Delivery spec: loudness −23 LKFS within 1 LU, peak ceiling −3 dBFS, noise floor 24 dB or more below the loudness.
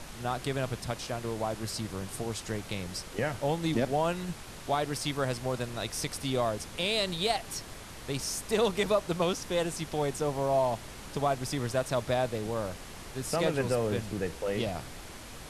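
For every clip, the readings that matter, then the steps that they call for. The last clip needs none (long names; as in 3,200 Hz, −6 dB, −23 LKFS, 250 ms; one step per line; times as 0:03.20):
background noise floor −45 dBFS; target noise floor −56 dBFS; integrated loudness −31.5 LKFS; sample peak −15.0 dBFS; target loudness −23.0 LKFS
→ noise reduction from a noise print 11 dB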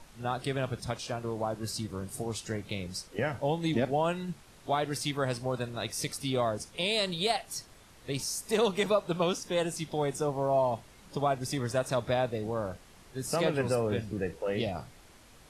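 background noise floor −56 dBFS; integrated loudness −31.5 LKFS; sample peak −15.0 dBFS; target loudness −23.0 LKFS
→ level +8.5 dB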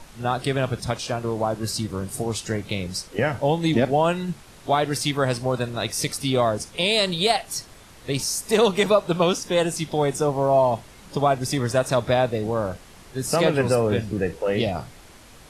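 integrated loudness −23.0 LKFS; sample peak −6.5 dBFS; background noise floor −47 dBFS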